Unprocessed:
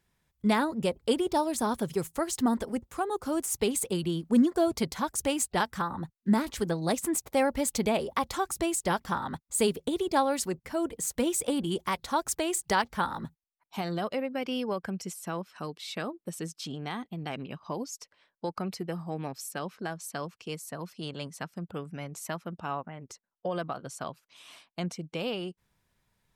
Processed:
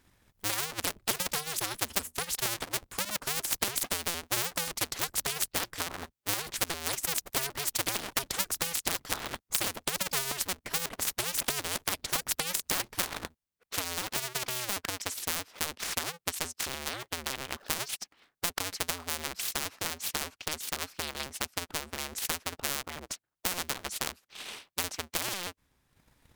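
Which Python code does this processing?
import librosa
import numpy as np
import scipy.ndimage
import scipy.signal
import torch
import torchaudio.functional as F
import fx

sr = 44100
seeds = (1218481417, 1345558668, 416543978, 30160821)

y = fx.cycle_switch(x, sr, every=2, mode='inverted')
y = fx.transient(y, sr, attack_db=10, sustain_db=-6)
y = fx.spectral_comp(y, sr, ratio=4.0)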